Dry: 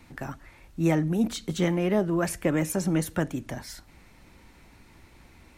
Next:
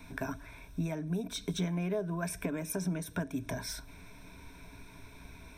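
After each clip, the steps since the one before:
downward compressor 8 to 1, threshold −33 dBFS, peak gain reduction 14.5 dB
EQ curve with evenly spaced ripples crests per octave 1.6, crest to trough 13 dB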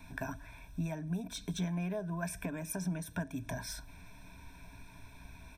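comb filter 1.2 ms, depth 49%
level −3.5 dB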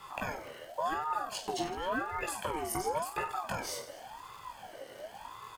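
surface crackle 250 per second −50 dBFS
on a send: reverse bouncing-ball delay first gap 20 ms, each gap 1.5×, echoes 5
on the sum: ring modulator whose carrier an LFO sweeps 800 Hz, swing 35%, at 0.92 Hz
level +4.5 dB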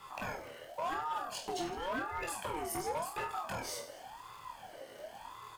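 hard clipping −28.5 dBFS, distortion −16 dB
on a send: flutter between parallel walls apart 4.5 metres, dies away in 0.2 s
on the sum: level −3 dB

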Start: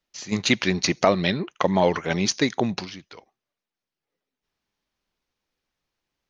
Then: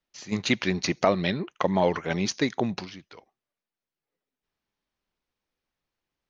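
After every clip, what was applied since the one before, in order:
high-shelf EQ 4,600 Hz −6 dB
level −3 dB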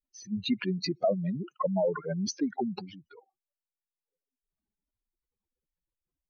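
expanding power law on the bin magnitudes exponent 3.5
level −3.5 dB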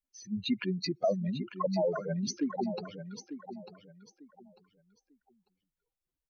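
repeating echo 896 ms, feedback 24%, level −11 dB
level −2 dB

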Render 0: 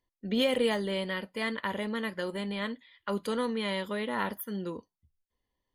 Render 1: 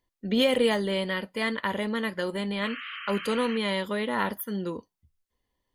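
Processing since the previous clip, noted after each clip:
sound drawn into the spectrogram noise, 0:02.62–0:03.58, 1,100–3,200 Hz −43 dBFS
level +4 dB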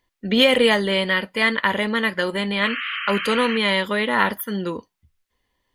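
parametric band 2,100 Hz +6.5 dB 2.1 octaves
level +5 dB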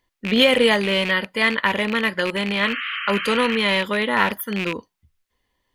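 loose part that buzzes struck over −30 dBFS, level −15 dBFS

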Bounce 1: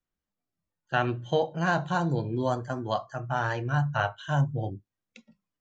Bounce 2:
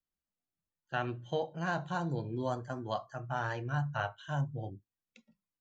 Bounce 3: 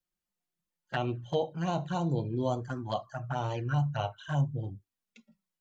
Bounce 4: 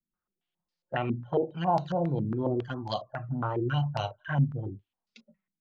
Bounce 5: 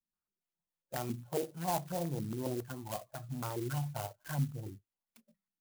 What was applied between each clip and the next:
speech leveller 2 s; level −7.5 dB
flanger swept by the level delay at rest 5.6 ms, full sweep at −31 dBFS; level +5.5 dB
low-pass on a step sequencer 7.3 Hz 240–4,800 Hz
converter with an unsteady clock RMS 0.082 ms; level −8 dB

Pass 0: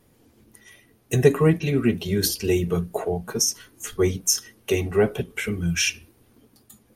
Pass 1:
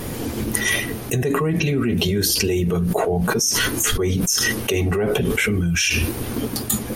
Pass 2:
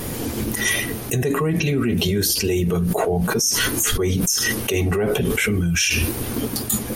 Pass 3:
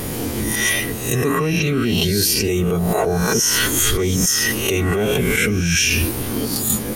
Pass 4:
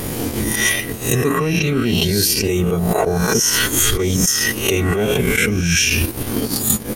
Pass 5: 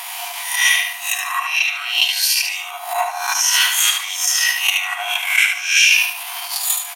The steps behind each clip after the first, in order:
envelope flattener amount 100%; level −9 dB
high-shelf EQ 5,400 Hz +4.5 dB; brickwall limiter −9.5 dBFS, peak gain reduction 10.5 dB
peak hold with a rise ahead of every peak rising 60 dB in 0.64 s
transient designer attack +5 dB, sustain −11 dB; level +1 dB
Chebyshev high-pass with heavy ripple 690 Hz, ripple 9 dB; repeating echo 74 ms, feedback 32%, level −5.5 dB; level +6.5 dB

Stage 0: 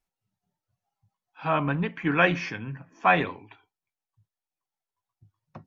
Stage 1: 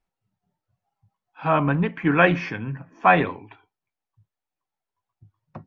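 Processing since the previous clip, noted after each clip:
low-pass filter 2,000 Hz 6 dB per octave
level +5.5 dB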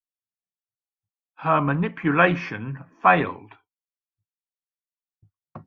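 downward expander −45 dBFS
parametric band 1,200 Hz +5 dB 0.46 octaves
level −1.5 dB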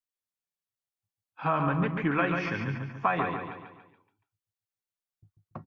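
downward compressor, threshold −22 dBFS, peak gain reduction 11.5 dB
on a send: repeating echo 142 ms, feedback 45%, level −5.5 dB
on the sum: level −1.5 dB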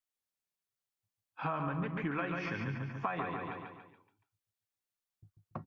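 downward compressor 3 to 1, threshold −35 dBFS, peak gain reduction 11 dB

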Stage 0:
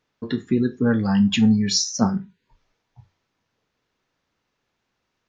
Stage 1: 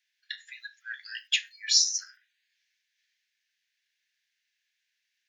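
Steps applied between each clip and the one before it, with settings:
Butterworth high-pass 1,600 Hz 96 dB per octave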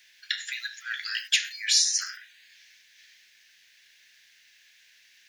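every bin compressed towards the loudest bin 2 to 1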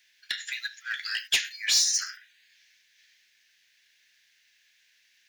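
in parallel at −1.5 dB: brickwall limiter −19 dBFS, peak gain reduction 9.5 dB
on the sum: soft clipping −15.5 dBFS, distortion −14 dB
expander for the loud parts 1.5 to 1, over −43 dBFS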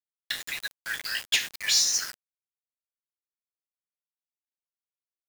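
bit reduction 6 bits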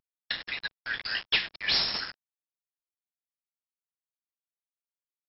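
variable-slope delta modulation 64 kbit/s
linear-phase brick-wall low-pass 5,500 Hz

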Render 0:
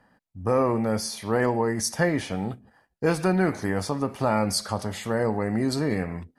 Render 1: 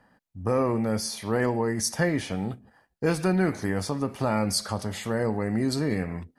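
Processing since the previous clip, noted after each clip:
dynamic equaliser 850 Hz, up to −4 dB, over −34 dBFS, Q 0.72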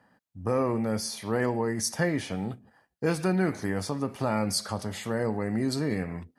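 high-pass filter 73 Hz
level −2 dB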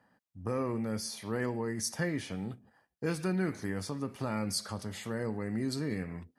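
dynamic equaliser 720 Hz, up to −6 dB, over −44 dBFS, Q 1.5
level −5 dB

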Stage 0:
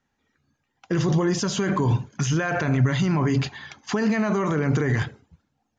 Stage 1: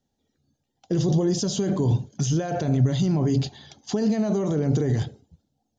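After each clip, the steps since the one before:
flat-topped bell 1,600 Hz −14.5 dB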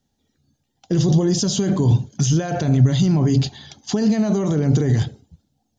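parametric band 510 Hz −5 dB 1.6 octaves
level +6.5 dB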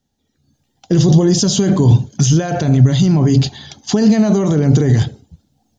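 automatic gain control gain up to 10 dB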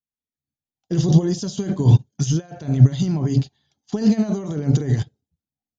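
expander for the loud parts 2.5 to 1, over −27 dBFS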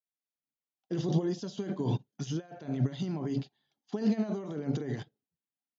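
band-pass filter 230–3,800 Hz
level −7.5 dB

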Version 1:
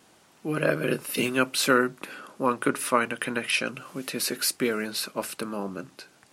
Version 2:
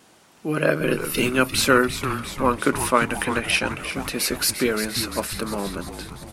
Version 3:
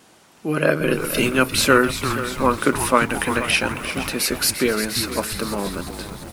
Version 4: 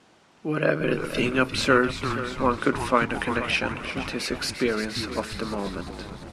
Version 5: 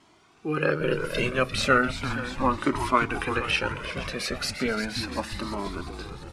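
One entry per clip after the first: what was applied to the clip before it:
echo with shifted repeats 347 ms, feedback 64%, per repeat −140 Hz, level −10 dB; level +4 dB
feedback echo at a low word length 476 ms, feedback 35%, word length 6 bits, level −12.5 dB; level +2 dB
high-frequency loss of the air 86 metres; level −4 dB
flanger whose copies keep moving one way rising 0.36 Hz; level +3.5 dB

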